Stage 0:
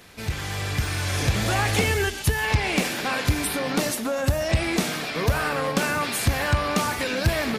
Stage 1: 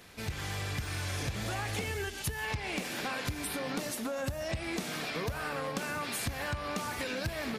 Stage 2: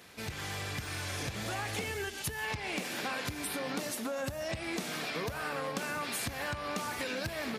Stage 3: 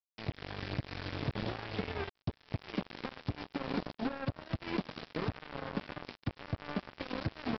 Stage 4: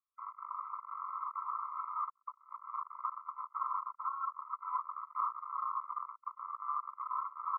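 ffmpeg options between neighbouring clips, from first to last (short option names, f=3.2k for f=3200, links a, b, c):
-af "acompressor=threshold=-27dB:ratio=6,volume=-5dB"
-af "highpass=f=140:p=1"
-filter_complex "[0:a]acrossover=split=450[a][b];[b]acompressor=threshold=-49dB:ratio=6[c];[a][c]amix=inputs=2:normalize=0,aresample=11025,acrusher=bits=5:mix=0:aa=0.5,aresample=44100,volume=4.5dB"
-af "asuperpass=centerf=1300:order=12:qfactor=1.9,afftfilt=real='re*eq(mod(floor(b*sr/1024/670),2),1)':imag='im*eq(mod(floor(b*sr/1024/670),2),1)':win_size=1024:overlap=0.75,volume=14dB"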